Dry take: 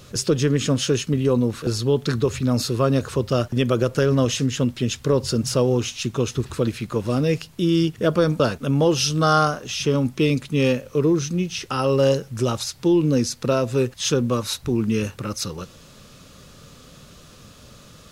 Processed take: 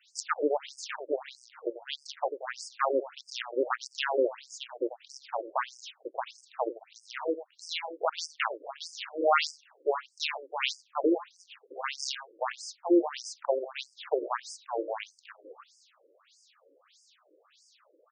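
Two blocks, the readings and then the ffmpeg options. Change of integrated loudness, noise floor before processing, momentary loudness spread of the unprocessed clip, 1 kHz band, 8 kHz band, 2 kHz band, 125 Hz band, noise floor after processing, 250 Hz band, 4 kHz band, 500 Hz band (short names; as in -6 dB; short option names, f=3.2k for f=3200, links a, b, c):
-11.0 dB, -47 dBFS, 6 LU, -5.0 dB, -14.5 dB, -4.5 dB, under -40 dB, -68 dBFS, -15.0 dB, -9.5 dB, -10.0 dB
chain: -filter_complex "[0:a]aeval=exprs='0.596*(cos(1*acos(clip(val(0)/0.596,-1,1)))-cos(1*PI/2))+0.119*(cos(7*acos(clip(val(0)/0.596,-1,1)))-cos(7*PI/2))':c=same,asplit=2[a][b];[b]adelay=90,highpass=300,lowpass=3.4k,asoftclip=type=hard:threshold=-15dB,volume=-12dB[c];[a][c]amix=inputs=2:normalize=0,afftfilt=real='re*between(b*sr/1024,400*pow(6800/400,0.5+0.5*sin(2*PI*1.6*pts/sr))/1.41,400*pow(6800/400,0.5+0.5*sin(2*PI*1.6*pts/sr))*1.41)':imag='im*between(b*sr/1024,400*pow(6800/400,0.5+0.5*sin(2*PI*1.6*pts/sr))/1.41,400*pow(6800/400,0.5+0.5*sin(2*PI*1.6*pts/sr))*1.41)':win_size=1024:overlap=0.75"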